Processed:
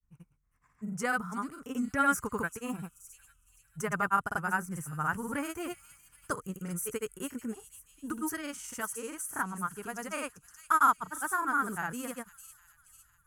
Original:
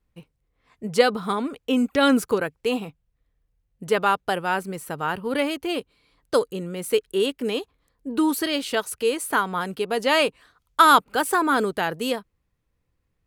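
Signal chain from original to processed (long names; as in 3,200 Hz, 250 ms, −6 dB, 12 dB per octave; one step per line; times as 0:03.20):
drawn EQ curve 140 Hz 0 dB, 490 Hz −20 dB, 1,400 Hz −3 dB, 4,000 Hz −24 dB, 6,100 Hz +7 dB
delay with a high-pass on its return 423 ms, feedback 44%, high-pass 4,400 Hz, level −8 dB
granular cloud, grains 20 per second, pitch spread up and down by 0 semitones
speech leveller within 5 dB 2 s
bass and treble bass −2 dB, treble −11 dB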